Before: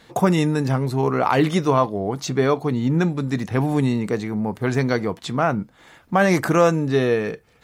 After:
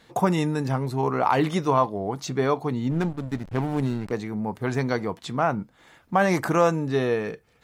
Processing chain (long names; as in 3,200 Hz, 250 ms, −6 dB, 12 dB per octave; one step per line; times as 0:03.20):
dynamic equaliser 900 Hz, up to +5 dB, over −33 dBFS, Q 1.9
0:02.91–0:04.12: slack as between gear wheels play −21.5 dBFS
level −5 dB